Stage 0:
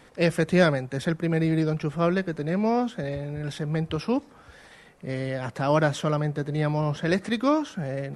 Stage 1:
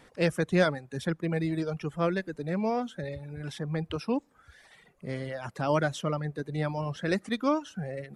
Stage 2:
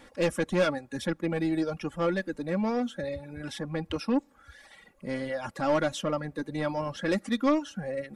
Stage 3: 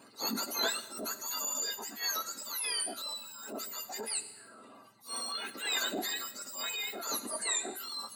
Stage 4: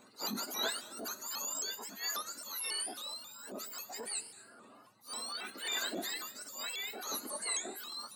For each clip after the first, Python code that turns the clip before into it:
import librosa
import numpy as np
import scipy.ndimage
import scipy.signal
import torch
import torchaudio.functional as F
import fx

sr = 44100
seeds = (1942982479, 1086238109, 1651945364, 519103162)

y1 = fx.dereverb_blind(x, sr, rt60_s=1.1)
y1 = y1 * librosa.db_to_amplitude(-3.5)
y2 = 10.0 ** (-22.5 / 20.0) * np.tanh(y1 / 10.0 ** (-22.5 / 20.0))
y2 = y2 + 0.6 * np.pad(y2, (int(3.6 * sr / 1000.0), 0))[:len(y2)]
y2 = y2 * librosa.db_to_amplitude(2.0)
y3 = fx.octave_mirror(y2, sr, pivot_hz=1500.0)
y3 = fx.rev_schroeder(y3, sr, rt60_s=1.2, comb_ms=32, drr_db=15.5)
y3 = fx.transient(y3, sr, attack_db=-8, sustain_db=3)
y4 = y3 + 10.0 ** (-22.5 / 20.0) * np.pad(y3, (int(227 * sr / 1000.0), 0))[:len(y3)]
y4 = fx.vibrato_shape(y4, sr, shape='saw_up', rate_hz=3.7, depth_cents=160.0)
y4 = y4 * librosa.db_to_amplitude(-3.5)